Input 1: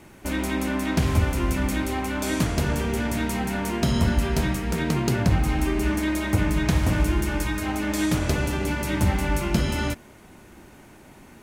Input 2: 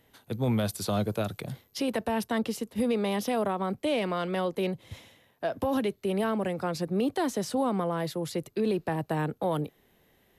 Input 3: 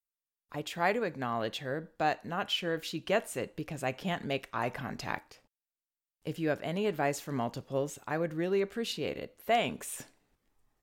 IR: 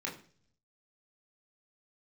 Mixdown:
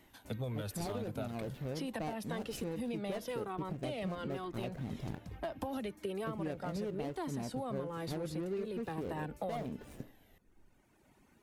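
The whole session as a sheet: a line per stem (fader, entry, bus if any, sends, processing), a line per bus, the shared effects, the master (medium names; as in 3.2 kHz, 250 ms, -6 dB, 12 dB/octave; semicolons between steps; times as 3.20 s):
-16.0 dB, 0.00 s, no send, reverb removal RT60 1.1 s; auto duck -10 dB, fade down 0.25 s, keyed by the second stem
+2.5 dB, 0.00 s, no send, Shepard-style flanger falling 1.1 Hz
+1.0 dB, 0.00 s, no send, median filter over 41 samples; bass shelf 490 Hz +7 dB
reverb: none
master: compression 6:1, threshold -36 dBFS, peak gain reduction 15 dB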